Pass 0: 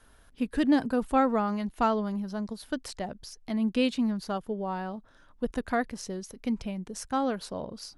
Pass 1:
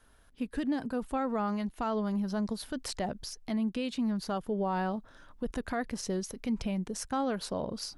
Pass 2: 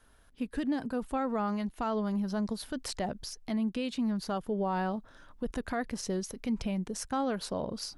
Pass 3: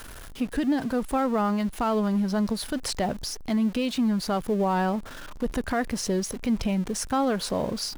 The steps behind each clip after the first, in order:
vocal rider within 4 dB 0.5 s; limiter -24 dBFS, peak gain reduction 11 dB
nothing audible
zero-crossing step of -43 dBFS; gain +6 dB

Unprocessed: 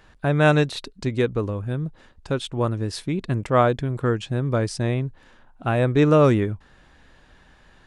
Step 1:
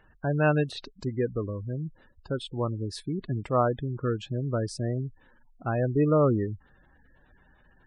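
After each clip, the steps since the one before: spectral gate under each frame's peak -20 dB strong; gain -6 dB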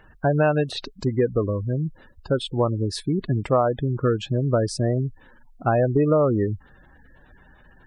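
dynamic EQ 680 Hz, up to +6 dB, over -39 dBFS, Q 1.2; compressor 6:1, threshold -24 dBFS, peak gain reduction 9.5 dB; gain +8 dB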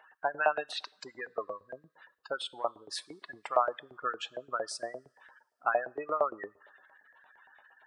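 two-slope reverb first 0.57 s, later 2.4 s, from -19 dB, DRR 19.5 dB; LFO high-pass saw up 8.7 Hz 670–2000 Hz; gain -7 dB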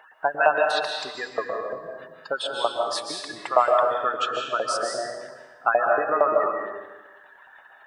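digital reverb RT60 1.2 s, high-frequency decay 0.95×, pre-delay 0.105 s, DRR 0.5 dB; gain +7.5 dB

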